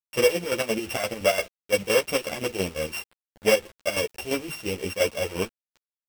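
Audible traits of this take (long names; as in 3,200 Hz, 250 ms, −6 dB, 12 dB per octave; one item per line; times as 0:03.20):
a buzz of ramps at a fixed pitch in blocks of 16 samples
chopped level 5.8 Hz, depth 65%, duty 55%
a quantiser's noise floor 8 bits, dither none
a shimmering, thickened sound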